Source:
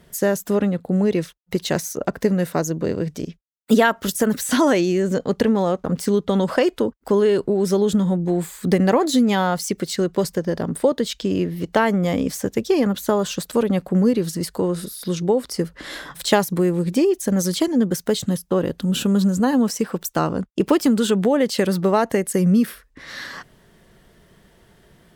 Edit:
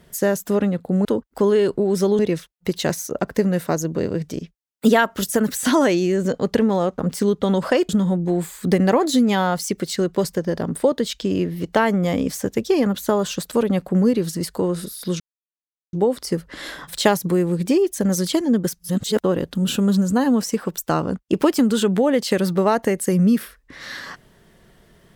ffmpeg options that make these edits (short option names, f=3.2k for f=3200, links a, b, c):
-filter_complex "[0:a]asplit=7[a][b][c][d][e][f][g];[a]atrim=end=1.052[h];[b]atrim=start=6.748:end=7.892[i];[c]atrim=start=1.048:end=6.752[j];[d]atrim=start=7.888:end=15.2,asetpts=PTS-STARTPTS,afade=t=out:st=7.308:d=0.004:c=hsin,apad=pad_dur=0.73[k];[e]atrim=start=15.2:end=18.062,asetpts=PTS-STARTPTS,afade=t=in:d=0.004:c=hsin[l];[f]atrim=start=18.058:end=18.472,asetpts=PTS-STARTPTS,areverse[m];[g]atrim=start=18.468[n];[h][i]acrossfade=d=0.004:c1=hsin:c2=hsin[o];[o][j]acrossfade=d=0.004:c1=hsin:c2=hsin[p];[k][l]concat=n=2:v=0:a=1[q];[p][q]acrossfade=d=0.004:c1=hsin:c2=hsin[r];[r][m]acrossfade=d=0.004:c1=hsin:c2=hsin[s];[s][n]acrossfade=d=0.004:c1=hsin:c2=hsin"